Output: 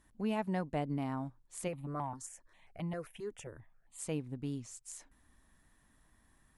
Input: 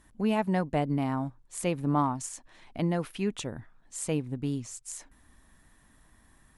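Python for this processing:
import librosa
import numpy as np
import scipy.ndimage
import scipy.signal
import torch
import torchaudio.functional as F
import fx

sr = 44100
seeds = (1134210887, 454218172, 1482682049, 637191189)

y = fx.phaser_held(x, sr, hz=7.5, low_hz=680.0, high_hz=1600.0, at=(1.67, 3.98), fade=0.02)
y = F.gain(torch.from_numpy(y), -7.5).numpy()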